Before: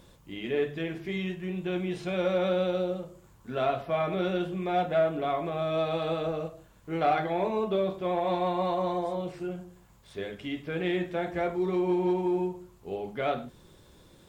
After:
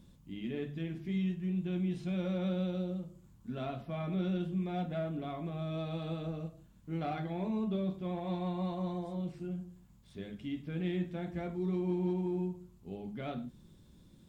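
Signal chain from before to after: EQ curve 110 Hz 0 dB, 220 Hz +5 dB, 440 Hz -11 dB, 1700 Hz -11 dB, 3600 Hz -7 dB; gain -2.5 dB

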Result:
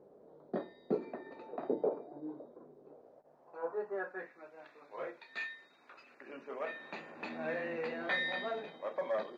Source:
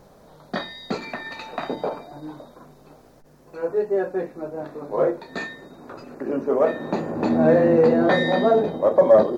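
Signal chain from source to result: dynamic EQ 170 Hz, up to +6 dB, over -32 dBFS, Q 0.83; band-pass sweep 400 Hz -> 2500 Hz, 2.8–4.59; gain -2.5 dB

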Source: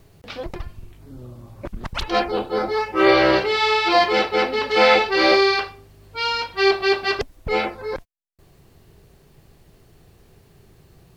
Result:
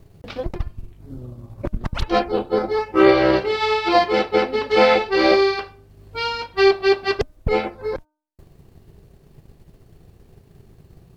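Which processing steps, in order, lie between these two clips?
tilt shelf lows +4 dB, about 690 Hz; de-hum 305.1 Hz, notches 5; transient shaper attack +6 dB, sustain -4 dB; gain -1 dB

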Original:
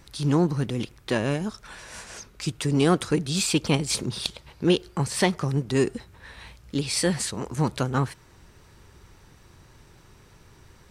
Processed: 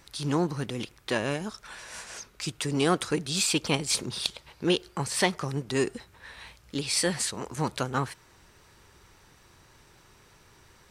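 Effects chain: low shelf 360 Hz -8.5 dB

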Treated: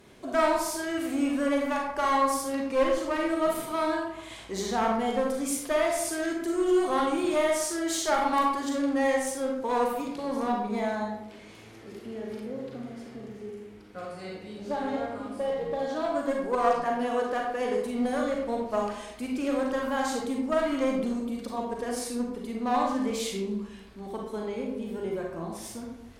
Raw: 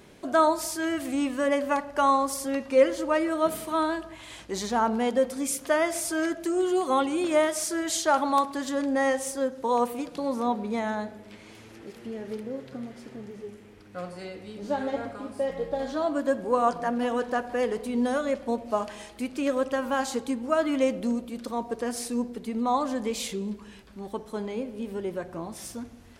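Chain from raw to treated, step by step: 15.71–17.84 low shelf 120 Hz -10 dB; one-sided clip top -24 dBFS; reverb RT60 0.70 s, pre-delay 34 ms, DRR -0.5 dB; gain -3.5 dB

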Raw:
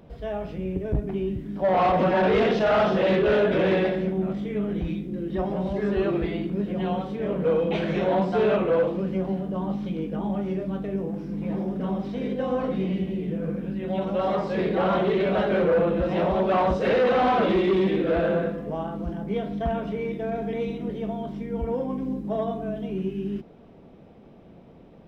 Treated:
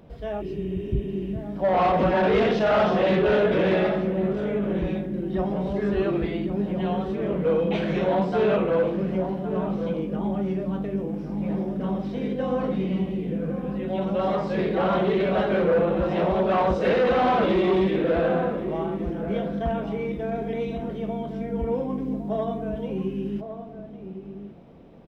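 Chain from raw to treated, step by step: outdoor echo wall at 190 m, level -9 dB; spectral repair 0.43–1.26, 270–3800 Hz after

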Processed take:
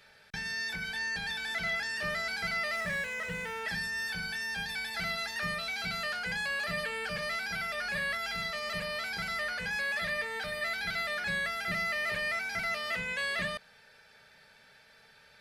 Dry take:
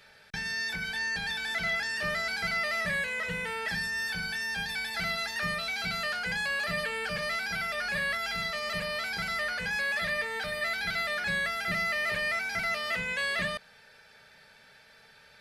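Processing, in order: 2.76–3.64 median filter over 9 samples; gain -2.5 dB

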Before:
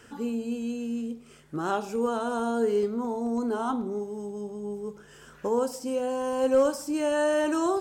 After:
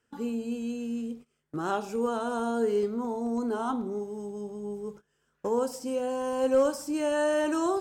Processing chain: gate -42 dBFS, range -22 dB; gain -1.5 dB

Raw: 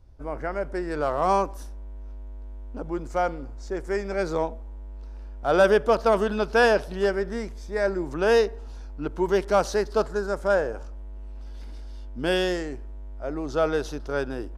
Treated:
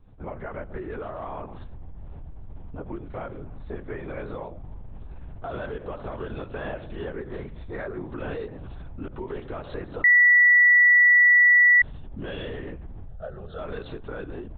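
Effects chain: limiter -19.5 dBFS, peak gain reduction 10.5 dB; compressor 2.5:1, threshold -33 dBFS, peak gain reduction 7 dB; LPC vocoder at 8 kHz whisper; 10.04–11.82 bleep 1950 Hz -12.5 dBFS; 13.08–13.59 fixed phaser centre 1500 Hz, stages 8

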